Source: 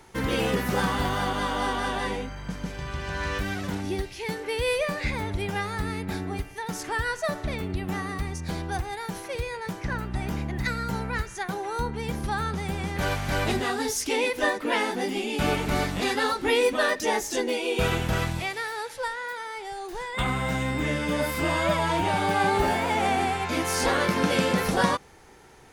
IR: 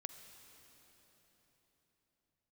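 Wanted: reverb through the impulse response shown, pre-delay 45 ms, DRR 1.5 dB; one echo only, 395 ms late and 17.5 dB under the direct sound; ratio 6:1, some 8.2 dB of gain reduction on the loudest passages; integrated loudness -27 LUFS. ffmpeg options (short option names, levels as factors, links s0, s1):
-filter_complex "[0:a]acompressor=threshold=0.0447:ratio=6,aecho=1:1:395:0.133,asplit=2[s0][s1];[1:a]atrim=start_sample=2205,adelay=45[s2];[s1][s2]afir=irnorm=-1:irlink=0,volume=1.33[s3];[s0][s3]amix=inputs=2:normalize=0,volume=1.26"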